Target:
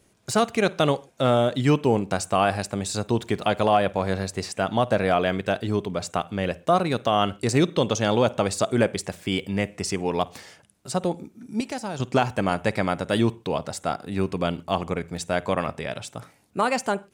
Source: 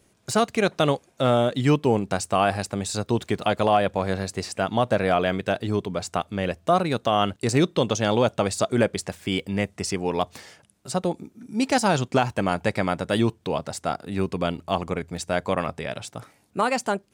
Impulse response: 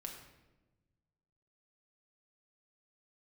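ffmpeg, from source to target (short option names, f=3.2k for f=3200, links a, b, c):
-filter_complex "[0:a]asettb=1/sr,asplit=3[a][b][c];[a]atrim=end=11.604[d];[b]atrim=start=11.6:end=12,asetpts=PTS-STARTPTS,afade=t=in:d=0.004:c=qsin,afade=t=out:st=0.396:d=0.004:c=qsin,acrossover=split=780|6700[e][f][g];[e]acompressor=threshold=-32dB:ratio=4[h];[f]acompressor=threshold=-38dB:ratio=4[i];[g]acompressor=threshold=-47dB:ratio=4[j];[h][i][j]amix=inputs=3:normalize=0[k];[c]atrim=start=11.996[l];[d][k]acrossfade=d=0.004:c1=hsin:c2=qsin[m];[m][l]acrossfade=d=0.004:c1=qsin:c2=hsin,asplit=2[n][o];[o]asuperstop=centerf=4800:order=4:qfactor=1.9[p];[1:a]atrim=start_sample=2205,atrim=end_sample=3969,adelay=52[q];[p][q]afir=irnorm=-1:irlink=0,volume=-16.5dB[r];[n][r]amix=inputs=2:normalize=0"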